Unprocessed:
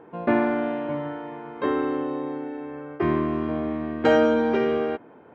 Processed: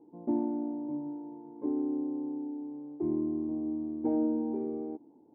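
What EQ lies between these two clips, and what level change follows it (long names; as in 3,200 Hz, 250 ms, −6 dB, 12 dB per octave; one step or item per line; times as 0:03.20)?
formant resonators in series u
−2.0 dB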